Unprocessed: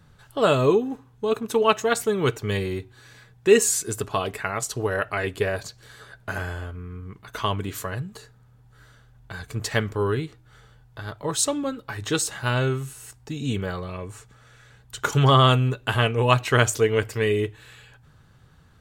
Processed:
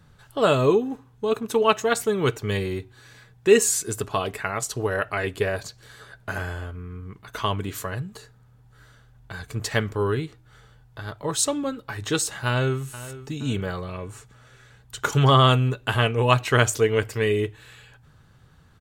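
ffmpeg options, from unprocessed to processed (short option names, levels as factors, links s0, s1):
-filter_complex "[0:a]asplit=2[s0][s1];[s1]afade=t=in:st=12.46:d=0.01,afade=t=out:st=12.87:d=0.01,aecho=0:1:470|940|1410|1880:0.16788|0.0671522|0.0268609|0.0107443[s2];[s0][s2]amix=inputs=2:normalize=0"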